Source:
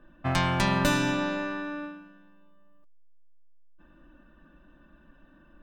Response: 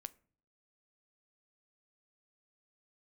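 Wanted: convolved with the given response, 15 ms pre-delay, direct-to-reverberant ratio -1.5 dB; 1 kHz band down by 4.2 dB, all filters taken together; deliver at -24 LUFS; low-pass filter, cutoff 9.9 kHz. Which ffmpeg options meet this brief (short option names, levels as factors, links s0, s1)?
-filter_complex "[0:a]lowpass=9900,equalizer=f=1000:t=o:g=-5,asplit=2[s0][s1];[1:a]atrim=start_sample=2205,adelay=15[s2];[s1][s2]afir=irnorm=-1:irlink=0,volume=2.11[s3];[s0][s3]amix=inputs=2:normalize=0"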